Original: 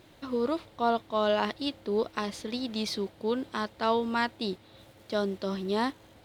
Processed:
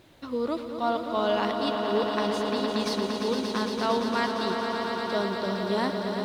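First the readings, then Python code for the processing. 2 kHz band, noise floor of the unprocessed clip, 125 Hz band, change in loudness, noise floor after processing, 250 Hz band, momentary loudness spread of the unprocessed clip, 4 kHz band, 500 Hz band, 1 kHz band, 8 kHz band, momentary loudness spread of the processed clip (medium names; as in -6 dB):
+3.5 dB, -56 dBFS, +4.0 dB, +3.0 dB, -37 dBFS, +3.5 dB, 7 LU, +3.5 dB, +3.0 dB, +3.5 dB, +4.0 dB, 4 LU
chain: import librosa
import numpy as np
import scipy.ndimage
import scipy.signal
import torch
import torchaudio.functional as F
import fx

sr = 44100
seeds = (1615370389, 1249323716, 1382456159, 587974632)

y = fx.echo_swell(x, sr, ms=115, loudest=5, wet_db=-8.0)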